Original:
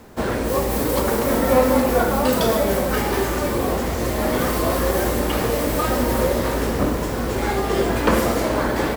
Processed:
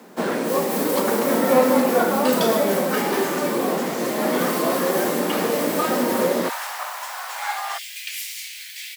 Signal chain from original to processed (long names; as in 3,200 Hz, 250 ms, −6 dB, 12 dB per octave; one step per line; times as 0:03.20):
Butterworth high-pass 160 Hz 48 dB per octave, from 0:06.48 730 Hz, from 0:07.77 2,200 Hz